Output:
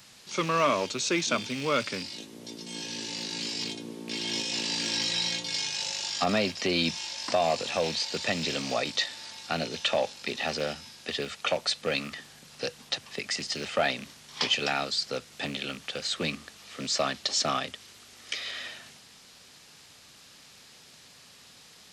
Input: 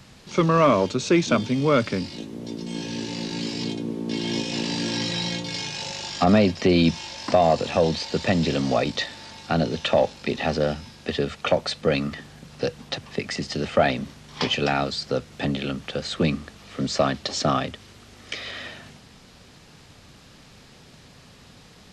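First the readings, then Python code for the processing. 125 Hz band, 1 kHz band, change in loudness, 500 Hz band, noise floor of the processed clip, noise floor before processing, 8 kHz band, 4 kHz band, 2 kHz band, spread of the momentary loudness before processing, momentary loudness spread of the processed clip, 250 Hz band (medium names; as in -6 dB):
-13.5 dB, -6.0 dB, -5.0 dB, -8.0 dB, -54 dBFS, -50 dBFS, +2.5 dB, +0.5 dB, -2.0 dB, 14 LU, 13 LU, -11.5 dB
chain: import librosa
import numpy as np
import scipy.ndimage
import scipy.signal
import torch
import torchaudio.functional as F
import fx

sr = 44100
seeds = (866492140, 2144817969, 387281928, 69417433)

y = fx.rattle_buzz(x, sr, strikes_db=-28.0, level_db=-27.0)
y = fx.tilt_eq(y, sr, slope=3.0)
y = y * librosa.db_to_amplitude(-5.5)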